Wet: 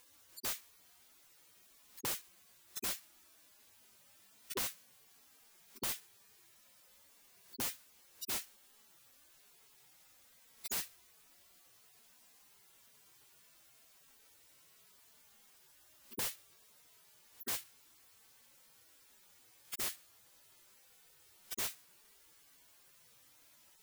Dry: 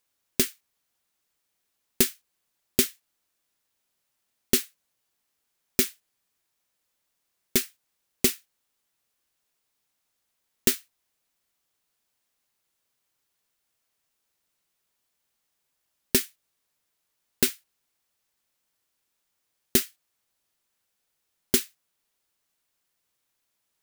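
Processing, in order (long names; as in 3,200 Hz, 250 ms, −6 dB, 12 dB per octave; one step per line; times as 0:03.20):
harmonic-percussive split with one part muted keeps harmonic
wrap-around overflow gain 48.5 dB
level +17.5 dB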